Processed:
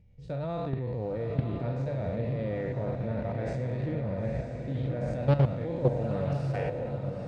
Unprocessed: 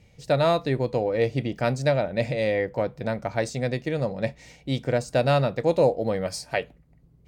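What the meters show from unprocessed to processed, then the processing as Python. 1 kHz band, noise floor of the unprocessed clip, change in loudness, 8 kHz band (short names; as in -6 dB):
-10.0 dB, -57 dBFS, -6.0 dB, under -20 dB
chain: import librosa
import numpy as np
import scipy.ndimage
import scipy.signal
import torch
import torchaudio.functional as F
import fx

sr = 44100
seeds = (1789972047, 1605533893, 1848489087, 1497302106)

p1 = fx.spec_trails(x, sr, decay_s=0.98)
p2 = fx.riaa(p1, sr, side='playback')
p3 = fx.hum_notches(p2, sr, base_hz=50, count=3)
p4 = fx.hpss(p3, sr, part='percussive', gain_db=-9)
p5 = fx.level_steps(p4, sr, step_db=13)
p6 = p5 + fx.echo_diffused(p5, sr, ms=945, feedback_pct=54, wet_db=-5.5, dry=0)
p7 = fx.doppler_dist(p6, sr, depth_ms=0.32)
y = p7 * librosa.db_to_amplitude(-6.5)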